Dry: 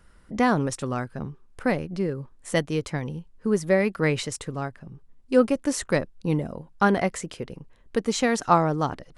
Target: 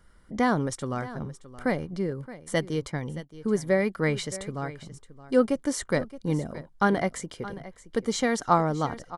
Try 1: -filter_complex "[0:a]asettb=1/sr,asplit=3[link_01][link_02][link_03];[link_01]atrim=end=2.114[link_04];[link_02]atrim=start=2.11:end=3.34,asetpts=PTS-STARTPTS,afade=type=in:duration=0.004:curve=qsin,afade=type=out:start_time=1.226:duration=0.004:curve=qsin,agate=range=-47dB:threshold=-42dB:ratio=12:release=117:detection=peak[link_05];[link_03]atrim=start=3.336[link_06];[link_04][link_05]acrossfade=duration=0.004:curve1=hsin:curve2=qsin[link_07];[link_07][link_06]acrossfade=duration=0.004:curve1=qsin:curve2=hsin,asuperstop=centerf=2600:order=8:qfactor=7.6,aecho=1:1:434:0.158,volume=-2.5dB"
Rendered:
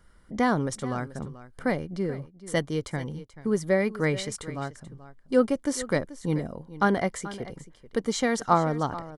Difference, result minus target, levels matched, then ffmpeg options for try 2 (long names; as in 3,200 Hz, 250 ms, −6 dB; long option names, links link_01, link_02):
echo 187 ms early
-filter_complex "[0:a]asettb=1/sr,asplit=3[link_01][link_02][link_03];[link_01]atrim=end=2.114[link_04];[link_02]atrim=start=2.11:end=3.34,asetpts=PTS-STARTPTS,afade=type=in:duration=0.004:curve=qsin,afade=type=out:start_time=1.226:duration=0.004:curve=qsin,agate=range=-47dB:threshold=-42dB:ratio=12:release=117:detection=peak[link_05];[link_03]atrim=start=3.336[link_06];[link_04][link_05]acrossfade=duration=0.004:curve1=hsin:curve2=qsin[link_07];[link_07][link_06]acrossfade=duration=0.004:curve1=qsin:curve2=hsin,asuperstop=centerf=2600:order=8:qfactor=7.6,aecho=1:1:621:0.158,volume=-2.5dB"